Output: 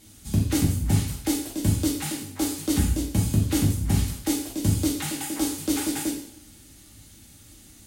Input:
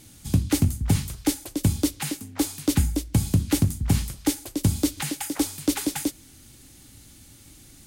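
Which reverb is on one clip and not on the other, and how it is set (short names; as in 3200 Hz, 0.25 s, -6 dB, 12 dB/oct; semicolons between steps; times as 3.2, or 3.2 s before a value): two-slope reverb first 0.64 s, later 1.6 s, from -23 dB, DRR -4 dB; gain -5.5 dB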